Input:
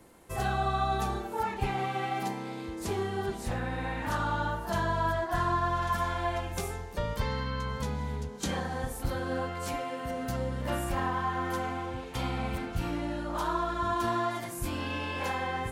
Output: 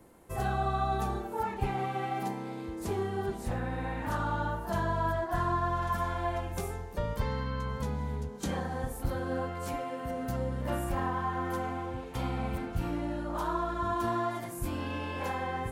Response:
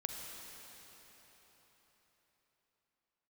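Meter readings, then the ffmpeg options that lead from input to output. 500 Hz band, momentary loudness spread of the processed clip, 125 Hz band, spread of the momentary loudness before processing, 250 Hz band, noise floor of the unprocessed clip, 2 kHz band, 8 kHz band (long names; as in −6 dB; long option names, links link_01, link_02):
−0.5 dB, 6 LU, 0.0 dB, 6 LU, 0.0 dB, −40 dBFS, −4.0 dB, −4.5 dB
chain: -af "equalizer=frequency=4200:width=0.4:gain=-6.5"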